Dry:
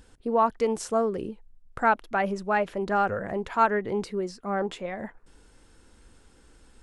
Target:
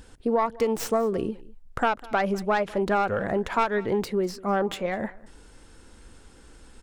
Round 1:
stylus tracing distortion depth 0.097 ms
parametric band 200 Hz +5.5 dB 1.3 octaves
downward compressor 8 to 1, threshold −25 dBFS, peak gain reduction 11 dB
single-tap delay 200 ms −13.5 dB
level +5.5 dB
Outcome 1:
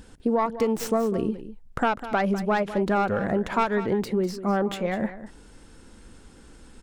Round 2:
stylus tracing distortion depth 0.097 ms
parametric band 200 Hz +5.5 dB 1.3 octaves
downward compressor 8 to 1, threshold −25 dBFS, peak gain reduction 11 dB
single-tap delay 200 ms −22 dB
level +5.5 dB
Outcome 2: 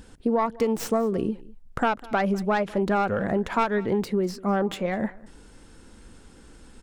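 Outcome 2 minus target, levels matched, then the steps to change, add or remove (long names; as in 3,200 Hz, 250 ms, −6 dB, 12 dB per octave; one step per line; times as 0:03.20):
250 Hz band +3.0 dB
remove: parametric band 200 Hz +5.5 dB 1.3 octaves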